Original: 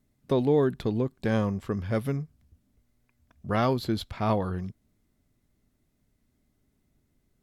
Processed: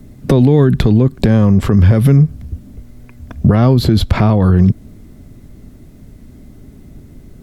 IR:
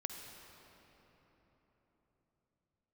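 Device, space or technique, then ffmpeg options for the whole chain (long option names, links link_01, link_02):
mastering chain: -filter_complex "[0:a]equalizer=frequency=890:width_type=o:width=0.77:gain=-2,acrossover=split=210|1100[link_01][link_02][link_03];[link_01]acompressor=threshold=-31dB:ratio=4[link_04];[link_02]acompressor=threshold=-36dB:ratio=4[link_05];[link_03]acompressor=threshold=-41dB:ratio=4[link_06];[link_04][link_05][link_06]amix=inputs=3:normalize=0,acompressor=threshold=-36dB:ratio=2,tiltshelf=frequency=810:gain=5.5,alimiter=level_in=29.5dB:limit=-1dB:release=50:level=0:latency=1,volume=-1dB"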